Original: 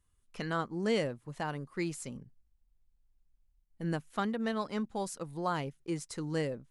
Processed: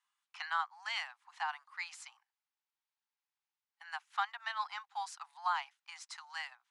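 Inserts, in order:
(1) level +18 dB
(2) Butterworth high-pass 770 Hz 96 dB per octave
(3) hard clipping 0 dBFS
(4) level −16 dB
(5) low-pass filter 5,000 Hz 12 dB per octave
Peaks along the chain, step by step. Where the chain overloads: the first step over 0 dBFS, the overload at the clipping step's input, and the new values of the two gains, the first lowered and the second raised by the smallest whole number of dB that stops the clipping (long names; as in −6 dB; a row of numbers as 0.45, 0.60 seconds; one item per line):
−0.5, −3.5, −3.5, −19.5, −19.5 dBFS
no step passes full scale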